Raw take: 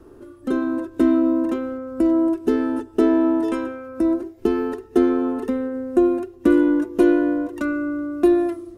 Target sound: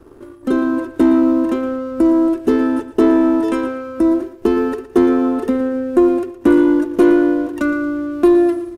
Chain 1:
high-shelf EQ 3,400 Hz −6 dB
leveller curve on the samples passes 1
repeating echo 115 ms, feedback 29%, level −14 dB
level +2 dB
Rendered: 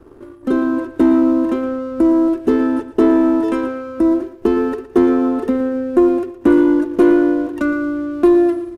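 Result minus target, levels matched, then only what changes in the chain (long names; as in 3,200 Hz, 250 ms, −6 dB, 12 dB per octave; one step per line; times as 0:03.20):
8,000 Hz band −4.0 dB
remove: high-shelf EQ 3,400 Hz −6 dB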